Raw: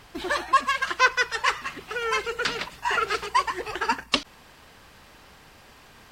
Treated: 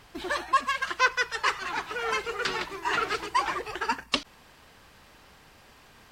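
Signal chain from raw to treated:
0:01.19–0:03.59: delay with pitch and tempo change per echo 244 ms, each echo −3 semitones, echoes 2, each echo −6 dB
level −3.5 dB

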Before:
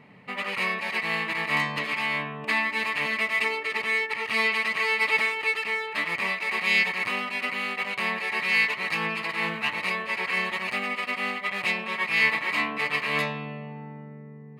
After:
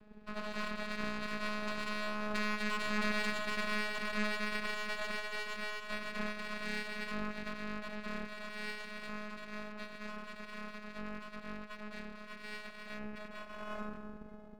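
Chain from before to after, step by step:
turntable brake at the end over 2.13 s
source passing by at 0:03.34, 20 m/s, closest 10 metres
convolution reverb RT60 2.0 s, pre-delay 3 ms, DRR 7 dB
hard clipping −21.5 dBFS, distortion −15 dB
downward compressor 3 to 1, threshold −36 dBFS, peak gain reduction 9.5 dB
channel vocoder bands 8, square 211 Hz
half-wave rectification
level +6 dB

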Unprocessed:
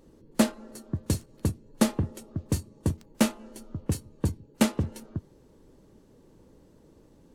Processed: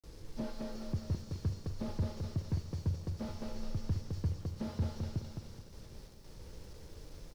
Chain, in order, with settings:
mu-law and A-law mismatch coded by A
noise gate with hold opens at −55 dBFS
low-shelf EQ 150 Hz +9.5 dB
harmonic and percussive parts rebalanced harmonic +8 dB
drawn EQ curve 100 Hz 0 dB, 160 Hz −5 dB, 240 Hz −12 dB, 490 Hz −2 dB, 2,600 Hz −5 dB, 5,300 Hz +13 dB, 11,000 Hz −22 dB
in parallel at −2 dB: brickwall limiter −20.5 dBFS, peak gain reduction 11.5 dB
on the sum: downward compressor 2.5 to 1, threshold −40 dBFS, peak gain reduction 18 dB
bit-depth reduction 10 bits, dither none
on a send: repeating echo 212 ms, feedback 32%, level −6 dB
on the sum: four-comb reverb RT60 3.6 s, combs from 32 ms, DRR 13.5 dB
slew-rate limiting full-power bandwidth 6.7 Hz
level +1 dB

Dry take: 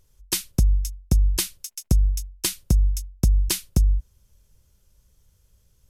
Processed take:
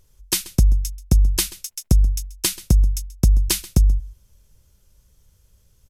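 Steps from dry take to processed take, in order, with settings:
single-tap delay 133 ms −19 dB
level +3.5 dB

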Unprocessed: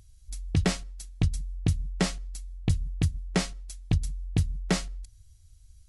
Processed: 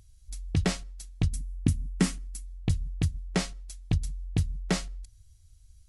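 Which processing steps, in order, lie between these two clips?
0:01.33–0:02.46: graphic EQ with 15 bands 250 Hz +11 dB, 630 Hz −10 dB, 4,000 Hz −4 dB, 10,000 Hz +6 dB
level −1.5 dB

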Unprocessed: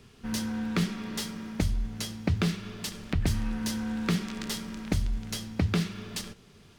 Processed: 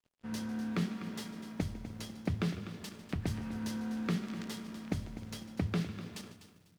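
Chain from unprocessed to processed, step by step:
high-pass filter 91 Hz 12 dB per octave
high-shelf EQ 2,400 Hz −7 dB
dead-zone distortion −50.5 dBFS
echo with shifted repeats 150 ms, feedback 37%, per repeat +36 Hz, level −17 dB
on a send at −23 dB: convolution reverb RT60 3.0 s, pre-delay 7 ms
on the sum: feedback echo at a low word length 249 ms, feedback 35%, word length 9 bits, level −12 dB
level −5 dB

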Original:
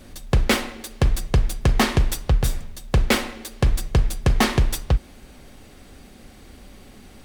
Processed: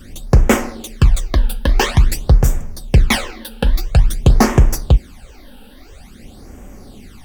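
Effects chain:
all-pass phaser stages 12, 0.49 Hz, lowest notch 110–4,100 Hz
level +7 dB

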